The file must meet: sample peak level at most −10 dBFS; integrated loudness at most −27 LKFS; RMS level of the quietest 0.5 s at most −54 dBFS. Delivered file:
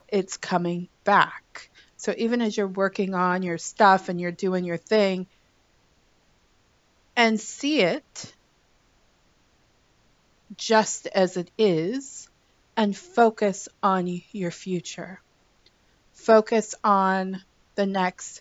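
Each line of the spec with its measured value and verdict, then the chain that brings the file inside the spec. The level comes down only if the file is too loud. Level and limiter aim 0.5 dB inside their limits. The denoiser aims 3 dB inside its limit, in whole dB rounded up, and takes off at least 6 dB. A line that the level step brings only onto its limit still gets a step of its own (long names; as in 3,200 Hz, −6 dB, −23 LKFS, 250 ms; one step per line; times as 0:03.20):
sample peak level −3.5 dBFS: out of spec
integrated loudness −24.0 LKFS: out of spec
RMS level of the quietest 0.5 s −63 dBFS: in spec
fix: level −3.5 dB
brickwall limiter −10.5 dBFS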